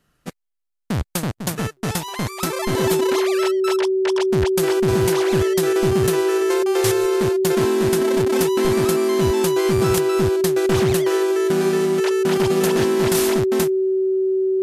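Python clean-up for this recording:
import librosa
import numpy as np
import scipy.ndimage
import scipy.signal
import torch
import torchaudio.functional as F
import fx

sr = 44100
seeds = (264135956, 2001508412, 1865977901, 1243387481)

y = fx.fix_declip(x, sr, threshold_db=-9.0)
y = fx.notch(y, sr, hz=380.0, q=30.0)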